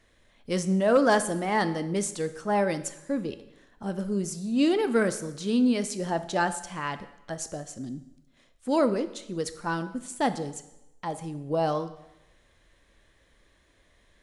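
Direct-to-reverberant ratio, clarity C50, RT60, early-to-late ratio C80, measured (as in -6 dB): 11.0 dB, 13.5 dB, 0.90 s, 15.5 dB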